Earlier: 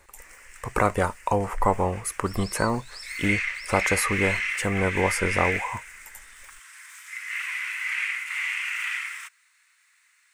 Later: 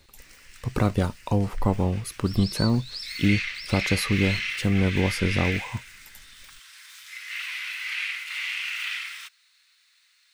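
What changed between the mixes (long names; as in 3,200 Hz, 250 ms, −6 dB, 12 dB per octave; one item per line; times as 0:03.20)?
background +4.0 dB
master: add graphic EQ with 10 bands 125 Hz +8 dB, 250 Hz +5 dB, 500 Hz −4 dB, 1,000 Hz −8 dB, 2,000 Hz −9 dB, 4,000 Hz +11 dB, 8,000 Hz −11 dB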